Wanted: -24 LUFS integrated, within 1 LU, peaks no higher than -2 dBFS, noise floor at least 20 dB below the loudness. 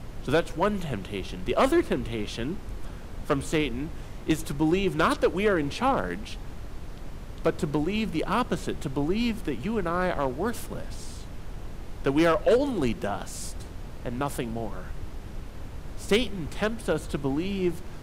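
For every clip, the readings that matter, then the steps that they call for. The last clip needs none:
clipped samples 0.5%; clipping level -15.0 dBFS; noise floor -40 dBFS; noise floor target -48 dBFS; loudness -28.0 LUFS; peak level -15.0 dBFS; loudness target -24.0 LUFS
-> clip repair -15 dBFS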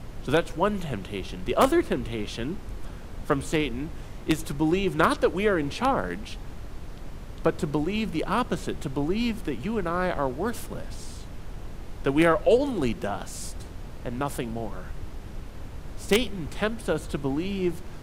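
clipped samples 0.0%; noise floor -40 dBFS; noise floor target -47 dBFS
-> noise print and reduce 7 dB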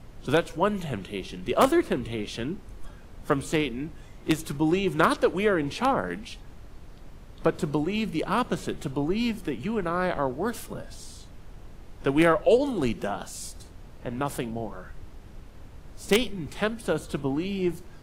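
noise floor -46 dBFS; noise floor target -47 dBFS
-> noise print and reduce 6 dB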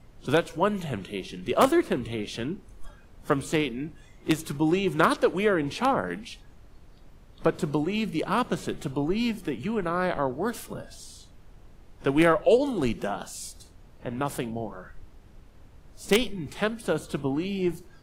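noise floor -52 dBFS; loudness -27.0 LUFS; peak level -6.0 dBFS; loudness target -24.0 LUFS
-> trim +3 dB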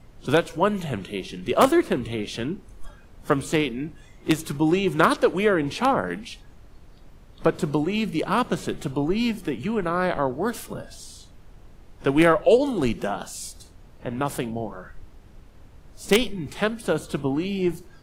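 loudness -24.0 LUFS; peak level -3.0 dBFS; noise floor -49 dBFS

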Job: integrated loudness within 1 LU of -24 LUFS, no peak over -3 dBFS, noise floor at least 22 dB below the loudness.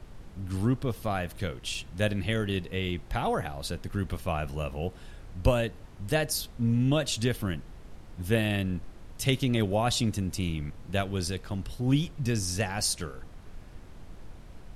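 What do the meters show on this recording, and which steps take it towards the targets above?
noise floor -47 dBFS; noise floor target -52 dBFS; loudness -30.0 LUFS; peak level -7.5 dBFS; loudness target -24.0 LUFS
-> noise print and reduce 6 dB; trim +6 dB; peak limiter -3 dBFS

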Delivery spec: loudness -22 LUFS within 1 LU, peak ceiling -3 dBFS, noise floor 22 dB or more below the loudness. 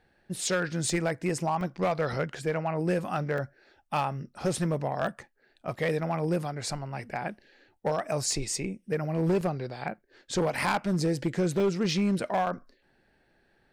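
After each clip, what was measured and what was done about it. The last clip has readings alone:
clipped samples 1.2%; clipping level -20.5 dBFS; dropouts 5; longest dropout 1.7 ms; loudness -30.0 LUFS; peak level -20.5 dBFS; loudness target -22.0 LUFS
-> clip repair -20.5 dBFS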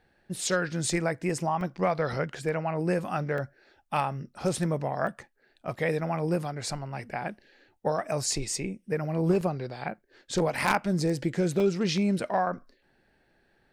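clipped samples 0.0%; dropouts 5; longest dropout 1.7 ms
-> interpolate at 1.61/3.38/5.07/9.41/11.60 s, 1.7 ms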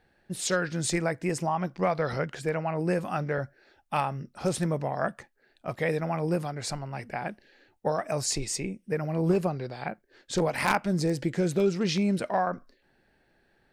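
dropouts 0; loudness -29.5 LUFS; peak level -11.5 dBFS; loudness target -22.0 LUFS
-> trim +7.5 dB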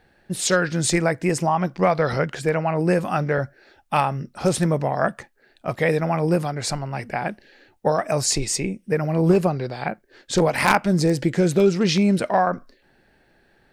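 loudness -22.0 LUFS; peak level -4.0 dBFS; noise floor -61 dBFS

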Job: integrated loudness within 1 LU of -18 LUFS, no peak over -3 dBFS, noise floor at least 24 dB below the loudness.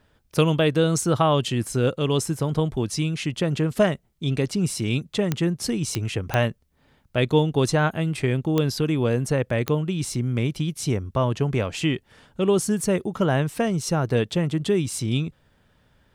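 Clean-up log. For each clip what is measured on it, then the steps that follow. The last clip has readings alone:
clicks found 5; loudness -24.0 LUFS; peak level -6.0 dBFS; loudness target -18.0 LUFS
-> de-click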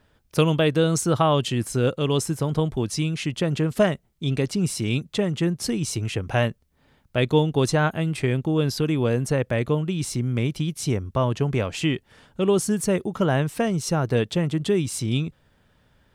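clicks found 0; loudness -24.0 LUFS; peak level -7.0 dBFS; loudness target -18.0 LUFS
-> trim +6 dB; peak limiter -3 dBFS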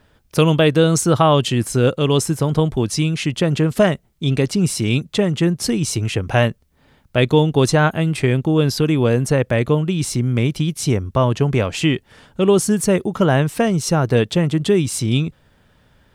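loudness -18.0 LUFS; peak level -3.0 dBFS; noise floor -58 dBFS

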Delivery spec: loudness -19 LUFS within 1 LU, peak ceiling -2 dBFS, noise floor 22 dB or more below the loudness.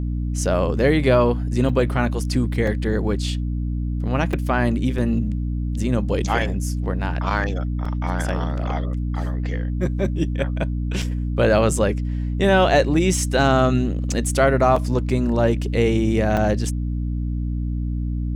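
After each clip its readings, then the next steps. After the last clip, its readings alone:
dropouts 8; longest dropout 4.0 ms; hum 60 Hz; highest harmonic 300 Hz; hum level -21 dBFS; loudness -21.5 LUFS; peak level -4.5 dBFS; loudness target -19.0 LUFS
-> interpolate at 1.69/2.67/4.33/4.98/7.85/11.02/14.76/16.37 s, 4 ms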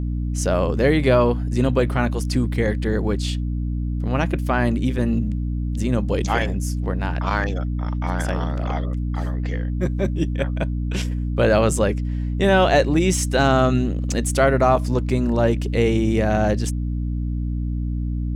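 dropouts 0; hum 60 Hz; highest harmonic 300 Hz; hum level -21 dBFS
-> de-hum 60 Hz, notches 5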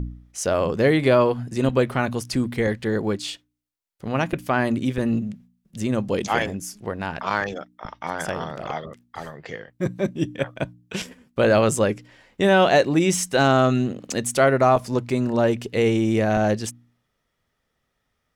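hum not found; loudness -22.5 LUFS; peak level -4.5 dBFS; loudness target -19.0 LUFS
-> trim +3.5 dB; peak limiter -2 dBFS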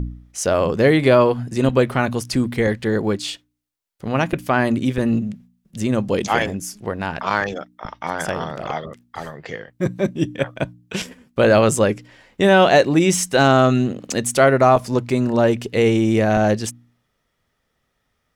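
loudness -18.5 LUFS; peak level -2.0 dBFS; noise floor -72 dBFS

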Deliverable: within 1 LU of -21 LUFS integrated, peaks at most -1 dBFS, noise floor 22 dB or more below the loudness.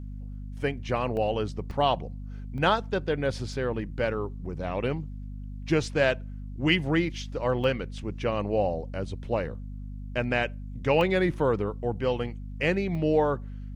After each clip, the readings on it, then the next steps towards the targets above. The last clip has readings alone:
dropouts 7; longest dropout 1.3 ms; hum 50 Hz; highest harmonic 250 Hz; hum level -35 dBFS; loudness -28.0 LUFS; peak level -9.0 dBFS; loudness target -21.0 LUFS
-> interpolate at 1.17/1.71/2.58/3.53/7.64/11.01/12.95 s, 1.3 ms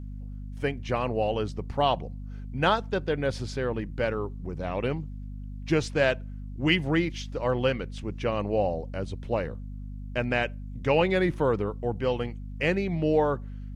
dropouts 0; hum 50 Hz; highest harmonic 250 Hz; hum level -35 dBFS
-> de-hum 50 Hz, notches 5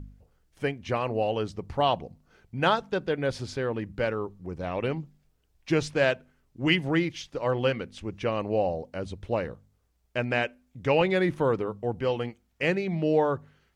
hum not found; loudness -28.5 LUFS; peak level -9.0 dBFS; loudness target -21.0 LUFS
-> trim +7.5 dB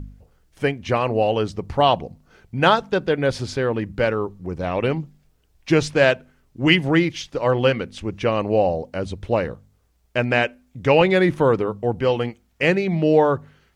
loudness -21.0 LUFS; peak level -1.5 dBFS; noise floor -62 dBFS

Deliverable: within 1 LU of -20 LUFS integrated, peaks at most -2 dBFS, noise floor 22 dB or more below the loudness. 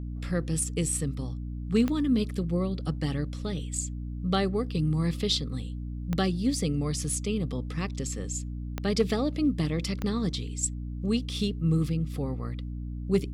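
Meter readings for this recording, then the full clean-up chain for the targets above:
clicks found 4; hum 60 Hz; highest harmonic 300 Hz; hum level -32 dBFS; loudness -29.5 LUFS; peak level -13.0 dBFS; loudness target -20.0 LUFS
-> de-click; de-hum 60 Hz, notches 5; trim +9.5 dB

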